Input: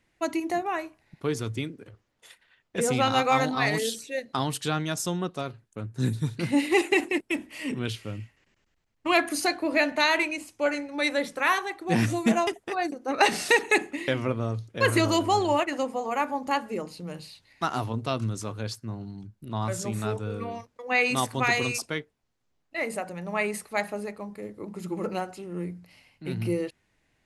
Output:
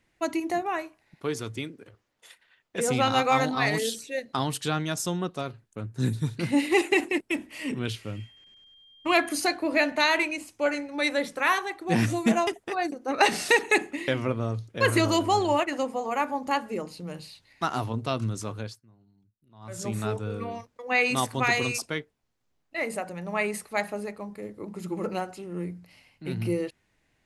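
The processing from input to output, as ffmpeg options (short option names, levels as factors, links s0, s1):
-filter_complex "[0:a]asettb=1/sr,asplit=3[s0][s1][s2];[s0]atrim=end=0.824[s3];[s1]atrim=start=0.82:end=2.88,asetpts=PTS-STARTPTS,afade=t=in:d=0.004:c=qsin,afade=t=out:st=2.056:d=0.004:c=qsin,lowshelf=f=210:g=-7.5[s4];[s2]atrim=start=2.876[s5];[s3][s4]acrossfade=d=0.004:c1=hsin:c2=qsin[s6];[s6][s5]acrossfade=d=0.004:c1=qsin:c2=hsin,asettb=1/sr,asplit=3[s7][s8][s9];[s7]atrim=end=8.164[s10];[s8]atrim=start=8.16:end=9.36,asetpts=PTS-STARTPTS,afade=t=in:d=0.004:c=qsin,afade=t=out:st=1.196:d=0.004:c=qsin,aeval=exprs='val(0)+0.00224*sin(2*PI*3200*n/s)':c=same[s11];[s9]atrim=start=9.356[s12];[s10][s11]acrossfade=d=0.004:c1=hsin:c2=qsin[s13];[s13][s12]acrossfade=d=0.004:c1=qsin:c2=hsin,asplit=3[s14][s15][s16];[s14]atrim=end=18.9,asetpts=PTS-STARTPTS,afade=t=out:st=18.59:d=0.31:c=qua:silence=0.0668344[s17];[s15]atrim=start=18.9:end=19.54,asetpts=PTS-STARTPTS,volume=0.0668[s18];[s16]atrim=start=19.54,asetpts=PTS-STARTPTS,afade=t=in:d=0.31:c=qua:silence=0.0668344[s19];[s17][s18][s19]concat=n=3:v=0:a=1"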